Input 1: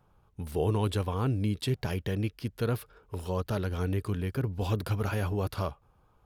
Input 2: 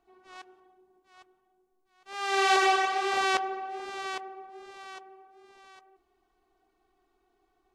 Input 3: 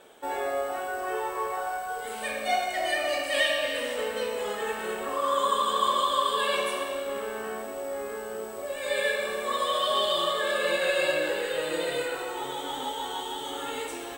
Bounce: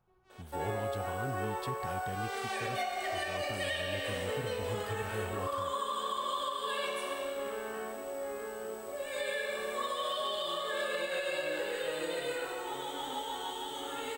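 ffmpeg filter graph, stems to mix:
-filter_complex "[0:a]volume=-10.5dB[a];[1:a]volume=-12dB[b];[2:a]adelay=300,volume=-5dB[c];[a][b][c]amix=inputs=3:normalize=0,alimiter=level_in=1dB:limit=-24dB:level=0:latency=1:release=220,volume=-1dB"

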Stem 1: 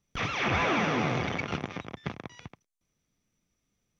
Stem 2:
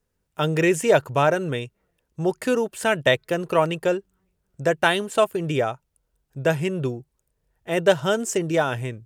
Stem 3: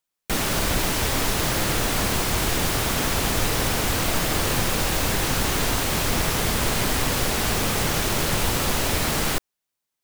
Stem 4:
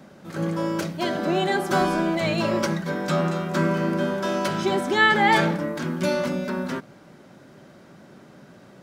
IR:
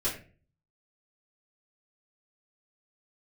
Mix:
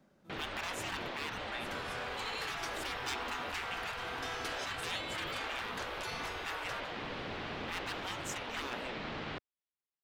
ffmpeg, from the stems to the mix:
-filter_complex "[1:a]equalizer=f=9.2k:t=o:w=0.94:g=-9,alimiter=limit=-11.5dB:level=0:latency=1:release=143,aeval=exprs='0.158*(abs(mod(val(0)/0.158+3,4)-2)-1)':c=same,volume=-8.5dB[a];[2:a]lowpass=f=3.6k:w=0.5412,lowpass=f=3.6k:w=1.3066,volume=-14.5dB[b];[3:a]alimiter=limit=-18dB:level=0:latency=1:release=10,volume=-7dB,afade=t=in:st=1.58:d=0.52:silence=0.223872[c];[a][b][c]amix=inputs=3:normalize=0,afftfilt=real='re*lt(hypot(re,im),0.0631)':imag='im*lt(hypot(re,im),0.0631)':win_size=1024:overlap=0.75"

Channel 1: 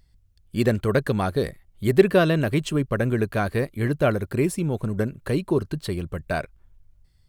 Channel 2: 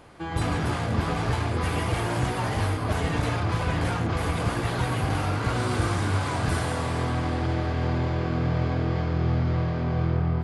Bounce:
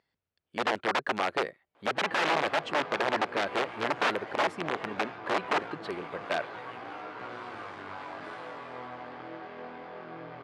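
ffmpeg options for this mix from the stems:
-filter_complex "[0:a]volume=-2dB[a];[1:a]aeval=exprs='if(lt(val(0),0),0.447*val(0),val(0))':c=same,flanger=delay=16:depth=4.1:speed=0.56,adelay=1750,volume=-4.5dB[b];[a][b]amix=inputs=2:normalize=0,aeval=exprs='(mod(7.94*val(0)+1,2)-1)/7.94':c=same,highpass=410,lowpass=2.7k"

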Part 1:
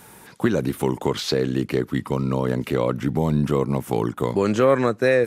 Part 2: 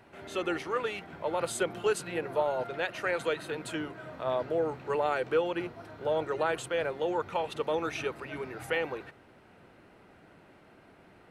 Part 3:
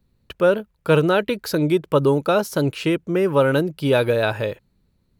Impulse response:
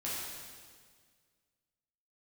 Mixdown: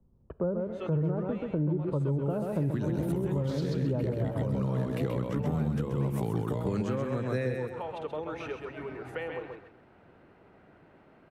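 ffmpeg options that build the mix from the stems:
-filter_complex "[0:a]adelay=2300,volume=-2dB,asplit=2[a][b];[b]volume=-3.5dB[c];[1:a]lowpass=f=1.6k:p=1,adelay=450,volume=-1dB,asplit=2[d][e];[e]volume=-6dB[f];[2:a]lowpass=f=1k:w=0.5412,lowpass=f=1k:w=1.3066,volume=-1dB,asplit=3[g][h][i];[h]volume=-20dB[j];[i]volume=-5dB[k];[3:a]atrim=start_sample=2205[l];[j][l]afir=irnorm=-1:irlink=0[m];[c][f][k]amix=inputs=3:normalize=0,aecho=0:1:131|262|393|524:1|0.23|0.0529|0.0122[n];[a][d][g][m][n]amix=inputs=5:normalize=0,acrossover=split=190[o][p];[p]acompressor=threshold=-33dB:ratio=4[q];[o][q]amix=inputs=2:normalize=0,alimiter=limit=-20.5dB:level=0:latency=1:release=214"

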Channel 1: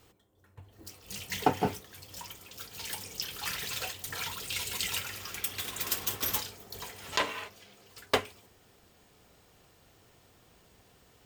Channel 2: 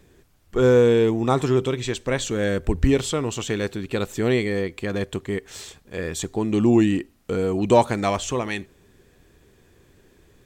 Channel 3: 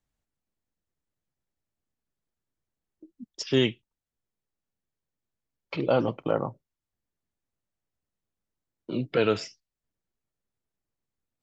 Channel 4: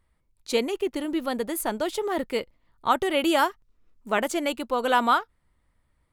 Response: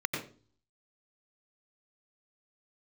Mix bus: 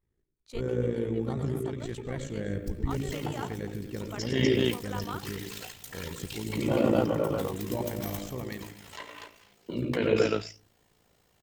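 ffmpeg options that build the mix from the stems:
-filter_complex "[0:a]adelay=1800,volume=-4dB,asplit=3[a][b][c];[b]volume=-20dB[d];[c]volume=-15.5dB[e];[1:a]agate=range=-33dB:threshold=-43dB:ratio=3:detection=peak,lowshelf=f=330:g=11,bandreject=f=980:w=8.7,volume=-16dB,asplit=3[f][g][h];[g]volume=-11dB[i];[h]volume=-13.5dB[j];[2:a]adelay=800,volume=1dB,asplit=3[k][l][m];[l]volume=-9dB[n];[m]volume=-3.5dB[o];[3:a]highshelf=f=8.7k:g=-5,volume=-15.5dB[p];[a][f][k]amix=inputs=3:normalize=0,alimiter=level_in=0.5dB:limit=-24dB:level=0:latency=1:release=281,volume=-0.5dB,volume=0dB[q];[4:a]atrim=start_sample=2205[r];[d][i][n]amix=inputs=3:normalize=0[s];[s][r]afir=irnorm=-1:irlink=0[t];[e][j][o]amix=inputs=3:normalize=0,aecho=0:1:245:1[u];[p][q][t][u]amix=inputs=4:normalize=0,tremolo=f=56:d=0.621"

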